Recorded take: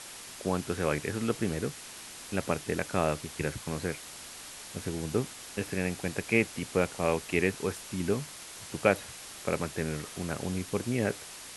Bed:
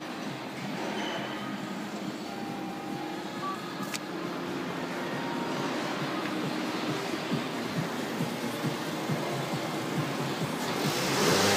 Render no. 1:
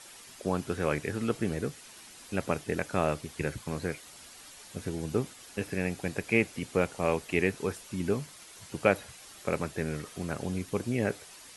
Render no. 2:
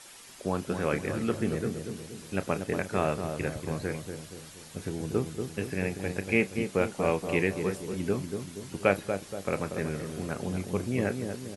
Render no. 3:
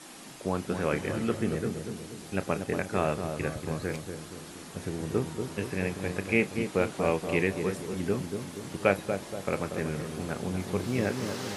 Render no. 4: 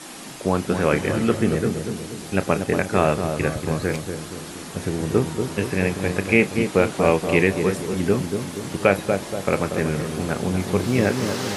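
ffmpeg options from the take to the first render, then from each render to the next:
ffmpeg -i in.wav -af "afftdn=noise_reduction=8:noise_floor=-46" out.wav
ffmpeg -i in.wav -filter_complex "[0:a]asplit=2[link_01][link_02];[link_02]adelay=31,volume=-14dB[link_03];[link_01][link_03]amix=inputs=2:normalize=0,asplit=2[link_04][link_05];[link_05]adelay=237,lowpass=frequency=910:poles=1,volume=-5.5dB,asplit=2[link_06][link_07];[link_07]adelay=237,lowpass=frequency=910:poles=1,volume=0.52,asplit=2[link_08][link_09];[link_09]adelay=237,lowpass=frequency=910:poles=1,volume=0.52,asplit=2[link_10][link_11];[link_11]adelay=237,lowpass=frequency=910:poles=1,volume=0.52,asplit=2[link_12][link_13];[link_13]adelay=237,lowpass=frequency=910:poles=1,volume=0.52,asplit=2[link_14][link_15];[link_15]adelay=237,lowpass=frequency=910:poles=1,volume=0.52,asplit=2[link_16][link_17];[link_17]adelay=237,lowpass=frequency=910:poles=1,volume=0.52[link_18];[link_04][link_06][link_08][link_10][link_12][link_14][link_16][link_18]amix=inputs=8:normalize=0" out.wav
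ffmpeg -i in.wav -i bed.wav -filter_complex "[1:a]volume=-13.5dB[link_01];[0:a][link_01]amix=inputs=2:normalize=0" out.wav
ffmpeg -i in.wav -af "volume=9dB,alimiter=limit=-2dB:level=0:latency=1" out.wav

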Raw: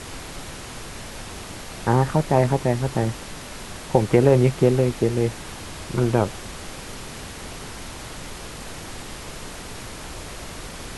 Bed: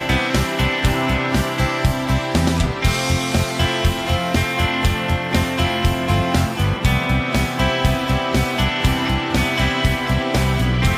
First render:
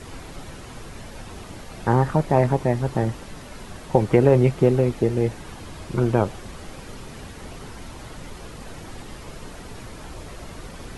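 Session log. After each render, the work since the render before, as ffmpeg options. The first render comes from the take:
ffmpeg -i in.wav -af "afftdn=noise_reduction=8:noise_floor=-37" out.wav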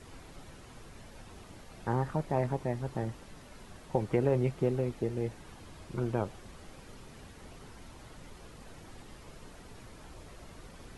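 ffmpeg -i in.wav -af "volume=-12dB" out.wav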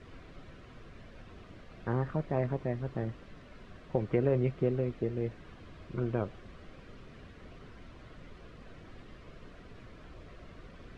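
ffmpeg -i in.wav -af "lowpass=3200,equalizer=frequency=860:width=6.7:gain=-12.5" out.wav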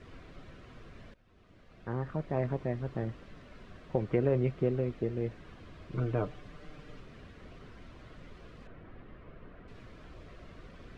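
ffmpeg -i in.wav -filter_complex "[0:a]asettb=1/sr,asplit=3[link_01][link_02][link_03];[link_01]atrim=end=5.924[link_04];[link_02]atrim=start=5.92:end=7.01,asetpts=PTS-STARTPTS,afade=type=in:duration=0.004:curve=qsin,afade=type=out:start_time=1.086:duration=0.004:curve=qsin,aecho=1:1:6.7:0.65,atrim=end_sample=48069[link_05];[link_03]atrim=start=7.006[link_06];[link_04][link_05]acrossfade=duration=0.004:curve1=hsin:curve2=qsin[link_07];[link_07][link_06]acrossfade=duration=0.004:curve1=qsin:curve2=hsin,asettb=1/sr,asplit=3[link_08][link_09][link_10];[link_08]atrim=end=8.674[link_11];[link_09]atrim=start=8.67:end=9.68,asetpts=PTS-STARTPTS,afade=type=in:duration=0.004:curve=qsin,afade=type=out:start_time=1.006:duration=0.004:curve=qsin,lowpass=2100[link_12];[link_10]atrim=start=9.676[link_13];[link_11][link_12]acrossfade=duration=0.004:curve1=hsin:curve2=qsin[link_14];[link_14][link_13]acrossfade=duration=0.004:curve1=qsin:curve2=hsin,asplit=2[link_15][link_16];[link_15]atrim=end=1.14,asetpts=PTS-STARTPTS,afade=type=out:start_time=1.136:duration=0.004:curve=hsin:silence=0.1[link_17];[link_16]atrim=start=1.14,asetpts=PTS-STARTPTS,afade=type=in:duration=1.36:silence=0.1[link_18];[link_17][link_18]concat=n=2:v=0:a=1" out.wav

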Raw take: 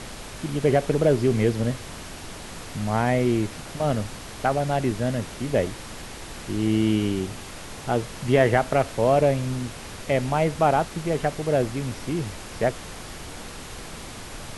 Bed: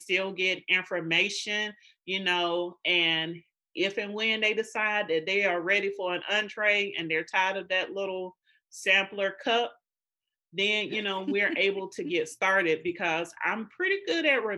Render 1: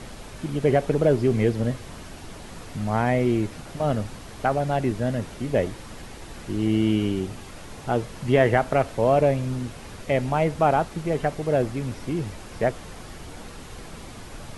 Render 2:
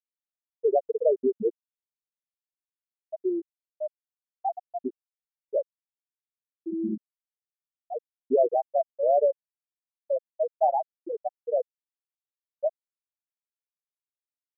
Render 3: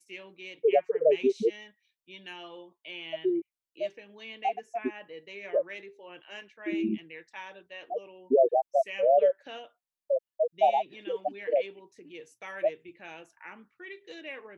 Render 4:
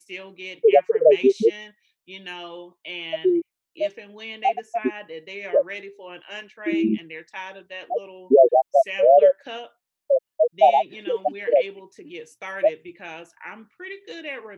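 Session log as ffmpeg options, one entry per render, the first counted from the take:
ffmpeg -i in.wav -af "afftdn=noise_reduction=6:noise_floor=-39" out.wav
ffmpeg -i in.wav -af "highpass=frequency=190:poles=1,afftfilt=real='re*gte(hypot(re,im),0.631)':imag='im*gte(hypot(re,im),0.631)':win_size=1024:overlap=0.75" out.wav
ffmpeg -i in.wav -i bed.wav -filter_complex "[1:a]volume=-17dB[link_01];[0:a][link_01]amix=inputs=2:normalize=0" out.wav
ffmpeg -i in.wav -af "volume=8dB" out.wav

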